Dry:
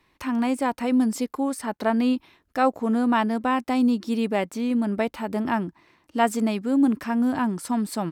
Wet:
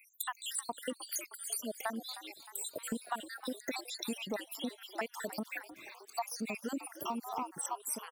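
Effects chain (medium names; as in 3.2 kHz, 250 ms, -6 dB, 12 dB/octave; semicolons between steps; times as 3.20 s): random holes in the spectrogram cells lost 81%; RIAA curve recording; compression 6:1, threshold -44 dBFS, peak gain reduction 22 dB; on a send: frequency-shifting echo 310 ms, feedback 59%, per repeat +89 Hz, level -14 dB; on the sum: trim +8 dB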